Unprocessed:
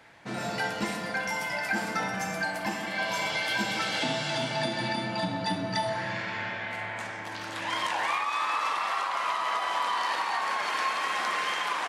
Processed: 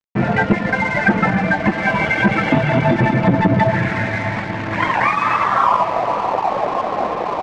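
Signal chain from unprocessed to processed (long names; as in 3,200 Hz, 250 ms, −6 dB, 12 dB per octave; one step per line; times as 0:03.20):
reverb reduction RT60 0.69 s
spectral tilt −4 dB per octave
tempo change 1.6×
low-pass filter sweep 2,200 Hz → 690 Hz, 0:05.39–0:05.90
dead-zone distortion −43.5 dBFS
high-frequency loss of the air 100 metres
feedback delay with all-pass diffusion 605 ms, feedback 68%, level −15.5 dB
boost into a limiter +14.5 dB
saturating transformer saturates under 310 Hz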